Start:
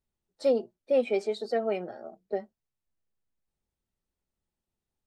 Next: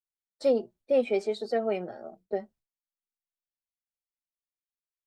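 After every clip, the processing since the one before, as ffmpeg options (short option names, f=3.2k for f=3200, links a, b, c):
-af "agate=range=-33dB:threshold=-53dB:ratio=3:detection=peak,lowshelf=f=120:g=6.5"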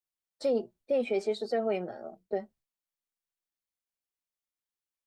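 -af "alimiter=limit=-20dB:level=0:latency=1:release=14"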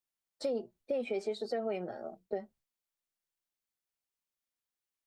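-af "acompressor=threshold=-33dB:ratio=2.5"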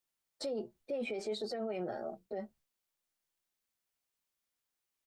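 -filter_complex "[0:a]alimiter=level_in=10dB:limit=-24dB:level=0:latency=1:release=13,volume=-10dB,asplit=2[a][b];[b]adelay=14,volume=-13dB[c];[a][c]amix=inputs=2:normalize=0,volume=3.5dB"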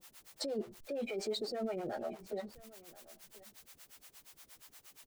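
-filter_complex "[0:a]aeval=exprs='val(0)+0.5*0.00282*sgn(val(0))':c=same,acrossover=split=480[a][b];[a]aeval=exprs='val(0)*(1-1/2+1/2*cos(2*PI*8.5*n/s))':c=same[c];[b]aeval=exprs='val(0)*(1-1/2-1/2*cos(2*PI*8.5*n/s))':c=same[d];[c][d]amix=inputs=2:normalize=0,aecho=1:1:1032:0.1,volume=4.5dB"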